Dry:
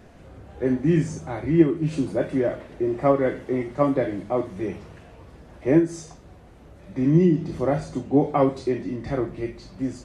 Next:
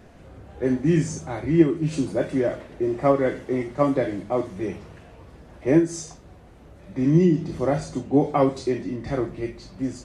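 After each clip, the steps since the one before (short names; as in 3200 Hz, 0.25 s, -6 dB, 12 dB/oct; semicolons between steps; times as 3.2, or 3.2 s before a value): dynamic EQ 6700 Hz, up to +7 dB, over -51 dBFS, Q 0.74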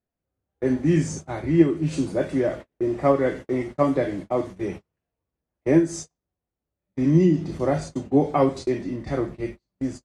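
gate -33 dBFS, range -39 dB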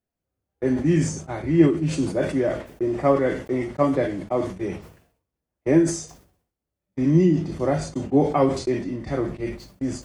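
notch 3900 Hz, Q 25; sustainer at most 98 dB/s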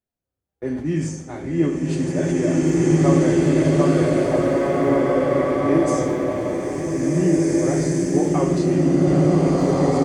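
on a send: feedback echo 82 ms, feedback 54%, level -12 dB; on the sum: bloom reverb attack 2.04 s, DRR -7.5 dB; gain -4 dB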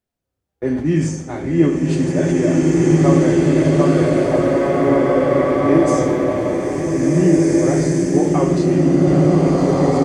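high shelf 7900 Hz -5 dB; in parallel at +2 dB: vocal rider within 4 dB 2 s; on the sum: gain -3.5 dB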